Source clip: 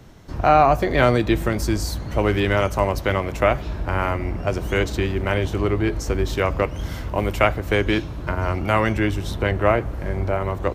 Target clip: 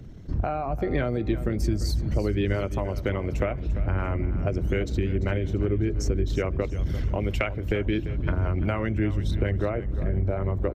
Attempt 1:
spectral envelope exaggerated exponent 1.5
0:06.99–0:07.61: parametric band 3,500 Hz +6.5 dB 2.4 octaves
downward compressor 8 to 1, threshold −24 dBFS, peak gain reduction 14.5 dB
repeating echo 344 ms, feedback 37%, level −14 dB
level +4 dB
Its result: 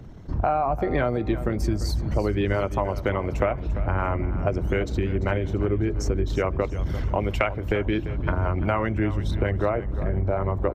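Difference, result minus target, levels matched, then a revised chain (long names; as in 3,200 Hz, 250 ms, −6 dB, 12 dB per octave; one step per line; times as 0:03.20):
1,000 Hz band +6.0 dB
spectral envelope exaggerated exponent 1.5
0:06.99–0:07.61: parametric band 3,500 Hz +6.5 dB 2.4 octaves
downward compressor 8 to 1, threshold −24 dBFS, peak gain reduction 14.5 dB
parametric band 940 Hz −9.5 dB 1.3 octaves
repeating echo 344 ms, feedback 37%, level −14 dB
level +4 dB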